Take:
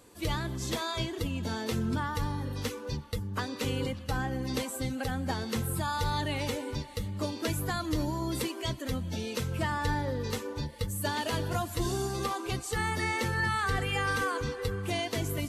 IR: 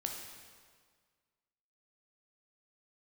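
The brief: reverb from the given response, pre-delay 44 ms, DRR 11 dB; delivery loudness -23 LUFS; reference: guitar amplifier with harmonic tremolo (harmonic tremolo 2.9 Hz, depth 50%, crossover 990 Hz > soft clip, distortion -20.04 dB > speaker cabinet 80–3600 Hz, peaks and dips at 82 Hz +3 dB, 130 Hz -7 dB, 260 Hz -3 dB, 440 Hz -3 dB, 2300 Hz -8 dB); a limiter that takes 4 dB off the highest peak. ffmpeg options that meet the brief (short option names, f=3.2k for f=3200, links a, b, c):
-filter_complex "[0:a]alimiter=limit=-22dB:level=0:latency=1,asplit=2[a][b];[1:a]atrim=start_sample=2205,adelay=44[c];[b][c]afir=irnorm=-1:irlink=0,volume=-11.5dB[d];[a][d]amix=inputs=2:normalize=0,acrossover=split=990[e][f];[e]aeval=exprs='val(0)*(1-0.5/2+0.5/2*cos(2*PI*2.9*n/s))':c=same[g];[f]aeval=exprs='val(0)*(1-0.5/2-0.5/2*cos(2*PI*2.9*n/s))':c=same[h];[g][h]amix=inputs=2:normalize=0,asoftclip=threshold=-26dB,highpass=80,equalizer=f=82:t=q:w=4:g=3,equalizer=f=130:t=q:w=4:g=-7,equalizer=f=260:t=q:w=4:g=-3,equalizer=f=440:t=q:w=4:g=-3,equalizer=f=2.3k:t=q:w=4:g=-8,lowpass=f=3.6k:w=0.5412,lowpass=f=3.6k:w=1.3066,volume=15.5dB"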